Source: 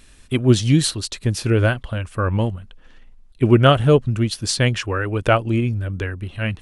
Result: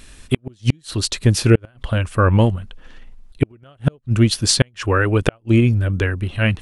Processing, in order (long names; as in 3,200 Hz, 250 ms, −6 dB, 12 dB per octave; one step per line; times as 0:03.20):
gate with flip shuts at −8 dBFS, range −40 dB
level +6 dB